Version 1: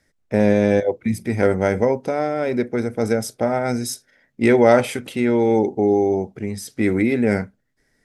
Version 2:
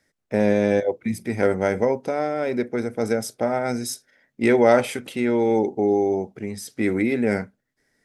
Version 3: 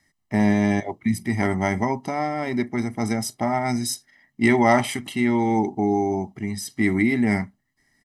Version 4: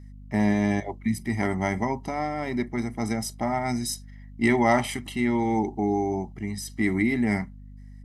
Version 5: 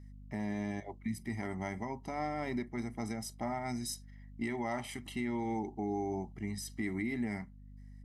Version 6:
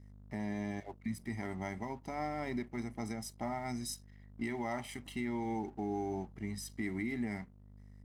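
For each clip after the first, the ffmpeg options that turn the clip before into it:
-af "lowshelf=f=90:g=-11.5,volume=-2dB"
-af "aecho=1:1:1:0.92"
-af "aeval=exprs='val(0)+0.0112*(sin(2*PI*50*n/s)+sin(2*PI*2*50*n/s)/2+sin(2*PI*3*50*n/s)/3+sin(2*PI*4*50*n/s)/4+sin(2*PI*5*50*n/s)/5)':c=same,volume=-3.5dB"
-af "alimiter=limit=-19dB:level=0:latency=1:release=459,volume=-7dB"
-af "aeval=exprs='sgn(val(0))*max(abs(val(0))-0.001,0)':c=same,volume=-1dB"

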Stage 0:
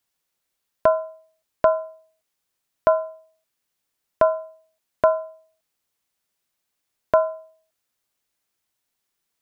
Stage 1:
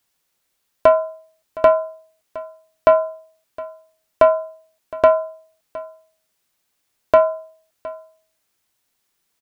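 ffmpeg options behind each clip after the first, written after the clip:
-af "acontrast=70,aecho=1:1:714:0.112"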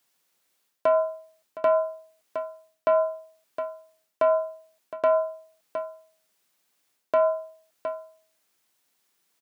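-af "areverse,acompressor=threshold=-19dB:ratio=6,areverse,highpass=160"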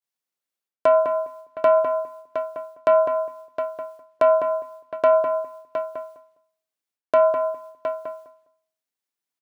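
-filter_complex "[0:a]agate=range=-33dB:threshold=-58dB:ratio=3:detection=peak,asplit=2[a][b];[b]adelay=204,lowpass=f=1.5k:p=1,volume=-5dB,asplit=2[c][d];[d]adelay=204,lowpass=f=1.5k:p=1,volume=0.18,asplit=2[e][f];[f]adelay=204,lowpass=f=1.5k:p=1,volume=0.18[g];[c][e][g]amix=inputs=3:normalize=0[h];[a][h]amix=inputs=2:normalize=0,volume=4.5dB"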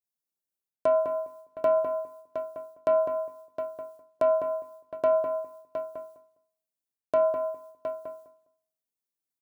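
-af "equalizer=f=2k:w=0.36:g=-12.5,bandreject=f=50:t=h:w=6,bandreject=f=100:t=h:w=6,bandreject=f=150:t=h:w=6,bandreject=f=200:t=h:w=6,bandreject=f=250:t=h:w=6,bandreject=f=300:t=h:w=6,bandreject=f=350:t=h:w=6,bandreject=f=400:t=h:w=6,bandreject=f=450:t=h:w=6,bandreject=f=500:t=h:w=6"

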